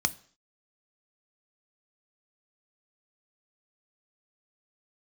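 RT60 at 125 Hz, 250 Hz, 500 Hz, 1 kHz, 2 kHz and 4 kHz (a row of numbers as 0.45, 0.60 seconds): 0.45, 0.50, 0.50, 0.50, 0.50, 0.55 seconds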